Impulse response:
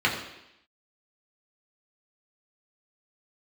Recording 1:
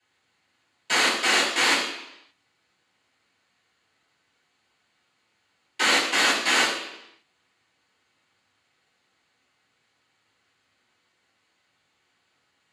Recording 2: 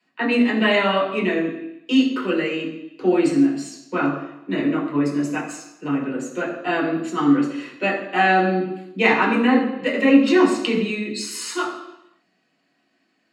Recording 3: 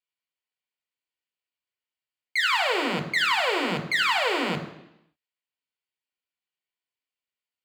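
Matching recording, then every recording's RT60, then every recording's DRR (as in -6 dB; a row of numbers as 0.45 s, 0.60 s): 2; 0.85 s, 0.85 s, 0.85 s; -13.5 dB, -3.5 dB, 4.5 dB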